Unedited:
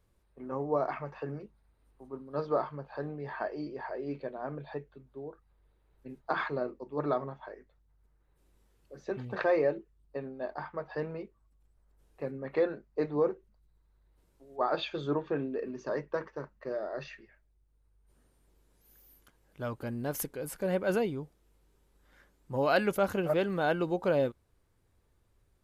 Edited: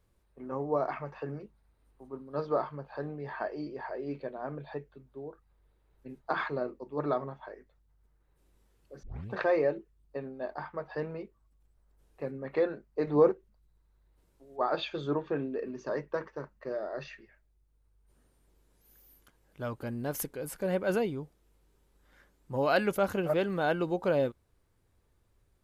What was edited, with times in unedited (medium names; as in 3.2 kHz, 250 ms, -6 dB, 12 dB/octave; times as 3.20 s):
9.03 s: tape start 0.27 s
13.07–13.32 s: gain +5.5 dB